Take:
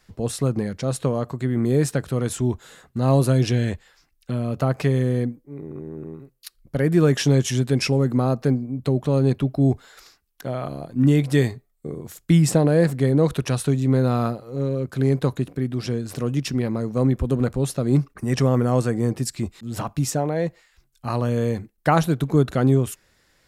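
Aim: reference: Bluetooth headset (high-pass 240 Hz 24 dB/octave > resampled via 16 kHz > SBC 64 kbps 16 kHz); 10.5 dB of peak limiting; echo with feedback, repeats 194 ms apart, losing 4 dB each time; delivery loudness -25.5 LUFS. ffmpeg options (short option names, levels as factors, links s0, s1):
-af "alimiter=limit=0.2:level=0:latency=1,highpass=f=240:w=0.5412,highpass=f=240:w=1.3066,aecho=1:1:194|388|582|776|970|1164|1358|1552|1746:0.631|0.398|0.25|0.158|0.0994|0.0626|0.0394|0.0249|0.0157,aresample=16000,aresample=44100,volume=1.19" -ar 16000 -c:a sbc -b:a 64k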